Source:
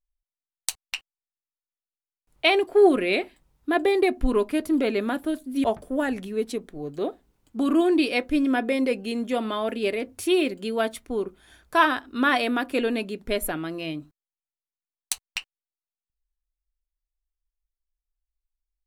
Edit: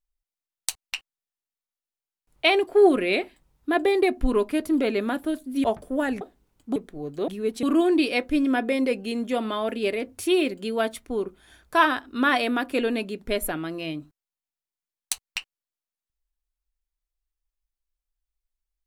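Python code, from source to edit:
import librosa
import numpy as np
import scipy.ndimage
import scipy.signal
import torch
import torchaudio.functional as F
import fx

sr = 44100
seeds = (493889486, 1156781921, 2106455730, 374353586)

y = fx.edit(x, sr, fx.swap(start_s=6.21, length_s=0.35, other_s=7.08, other_length_s=0.55), tone=tone)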